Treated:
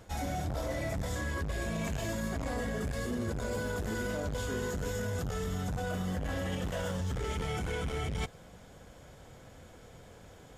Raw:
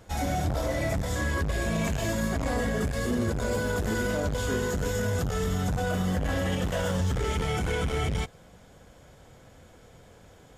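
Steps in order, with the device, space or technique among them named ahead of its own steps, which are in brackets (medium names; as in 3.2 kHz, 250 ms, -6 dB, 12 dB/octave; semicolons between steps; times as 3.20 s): compression on the reversed sound (reverse; compression, threshold -31 dBFS, peak gain reduction 8 dB; reverse)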